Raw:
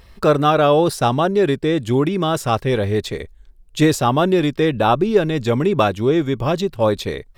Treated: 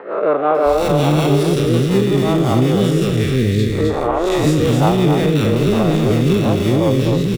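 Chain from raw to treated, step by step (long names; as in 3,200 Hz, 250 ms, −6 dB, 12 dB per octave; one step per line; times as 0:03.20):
spectrum smeared in time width 169 ms
in parallel at −11 dB: decimation without filtering 27×
on the sum: three-band delay without the direct sound mids, highs, lows 550/660 ms, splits 380/1,600 Hz
rotating-speaker cabinet horn 5.5 Hz
on a send: single-tap delay 259 ms −6 dB
on the sum: multiband upward and downward compressor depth 70%
level +6.5 dB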